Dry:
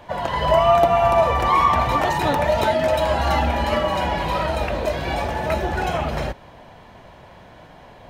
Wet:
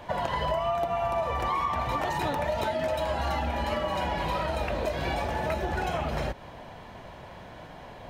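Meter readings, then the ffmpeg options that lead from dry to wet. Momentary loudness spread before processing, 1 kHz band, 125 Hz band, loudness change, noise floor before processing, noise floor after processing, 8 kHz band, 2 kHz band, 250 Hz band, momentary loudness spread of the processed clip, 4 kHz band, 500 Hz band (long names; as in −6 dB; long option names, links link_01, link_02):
9 LU, −9.5 dB, −8.0 dB, −9.5 dB, −45 dBFS, −45 dBFS, −8.0 dB, −8.0 dB, −8.0 dB, 17 LU, −8.5 dB, −9.5 dB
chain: -af "acompressor=threshold=-26dB:ratio=6"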